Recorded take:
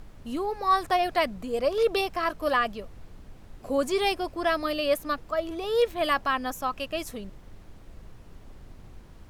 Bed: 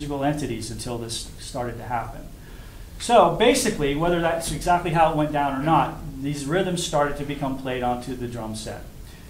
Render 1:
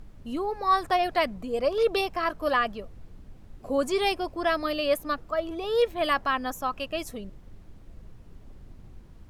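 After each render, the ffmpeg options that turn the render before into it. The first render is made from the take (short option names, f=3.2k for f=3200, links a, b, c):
-af "afftdn=nr=6:nf=-49"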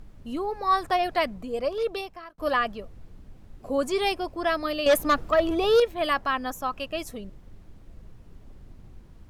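-filter_complex "[0:a]asettb=1/sr,asplit=3[a][b][c];[a]atrim=end=4.864[d];[b]atrim=start=4.86:end=5.8,asetpts=PTS-STARTPTS,afade=t=in:d=0.004:c=qsin,afade=t=out:st=0.936:d=0.004:c=qsin,aeval=exprs='0.2*sin(PI/2*1.78*val(0)/0.2)':c=same[e];[c]atrim=start=5.796[f];[d][e]acrossfade=d=0.004:c1=hsin:c2=qsin[g];[g][f]acrossfade=d=0.004:c1=qsin:c2=hsin,asplit=2[h][i];[h]atrim=end=2.38,asetpts=PTS-STARTPTS,afade=t=out:st=1.11:d=1.27:c=qsin[j];[i]atrim=start=2.38,asetpts=PTS-STARTPTS,afade=t=in:d=0.004:c=hsin[k];[j][k]concat=n=2:v=0:a=1"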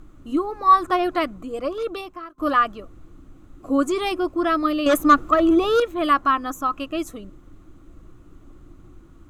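-af "superequalizer=6b=3.55:10b=2.82:14b=0.631:15b=1.58"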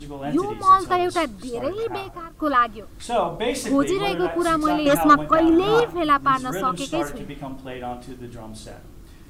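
-filter_complex "[1:a]volume=-7dB[a];[0:a][a]amix=inputs=2:normalize=0"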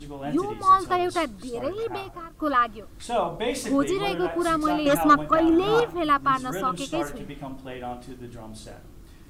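-af "volume=-3dB"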